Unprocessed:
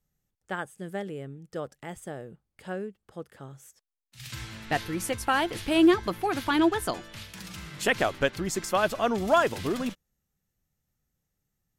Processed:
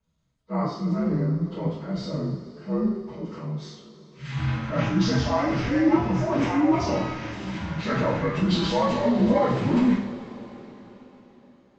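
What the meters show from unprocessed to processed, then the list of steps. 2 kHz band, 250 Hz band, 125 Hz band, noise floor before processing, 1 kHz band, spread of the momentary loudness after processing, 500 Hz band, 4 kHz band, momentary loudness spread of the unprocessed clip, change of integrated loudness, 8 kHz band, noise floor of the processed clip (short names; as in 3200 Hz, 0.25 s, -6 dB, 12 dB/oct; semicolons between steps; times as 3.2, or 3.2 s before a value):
-3.0 dB, +6.5 dB, +13.5 dB, -83 dBFS, +1.0 dB, 14 LU, +2.0 dB, 0.0 dB, 19 LU, +2.5 dB, -6.5 dB, -58 dBFS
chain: inharmonic rescaling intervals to 83%; compressor, threshold -29 dBFS, peak gain reduction 12.5 dB; dynamic EQ 170 Hz, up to +7 dB, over -49 dBFS, Q 0.86; transient shaper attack -7 dB, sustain +8 dB; LPF 2300 Hz 6 dB/oct; two-slope reverb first 0.58 s, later 4.4 s, from -18 dB, DRR -8 dB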